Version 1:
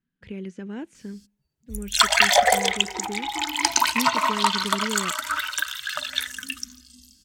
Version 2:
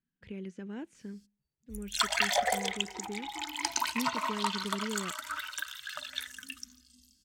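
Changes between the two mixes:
speech -6.5 dB; background -11.0 dB

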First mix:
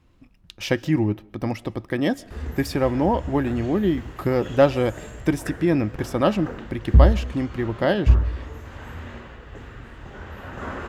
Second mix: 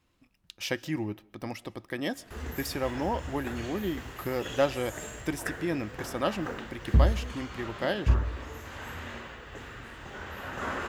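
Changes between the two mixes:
speech -7.5 dB; master: add tilt +2 dB/oct

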